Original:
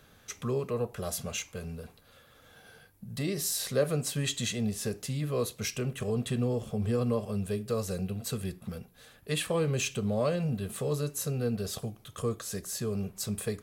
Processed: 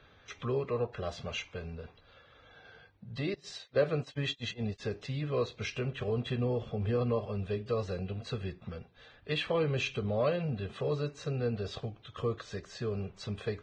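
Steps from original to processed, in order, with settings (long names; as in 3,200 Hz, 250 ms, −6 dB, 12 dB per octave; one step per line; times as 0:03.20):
0:03.34–0:04.80: noise gate −31 dBFS, range −32 dB
low-pass filter 4,000 Hz 24 dB per octave
parametric band 200 Hz −6.5 dB 0.82 octaves
Ogg Vorbis 16 kbit/s 22,050 Hz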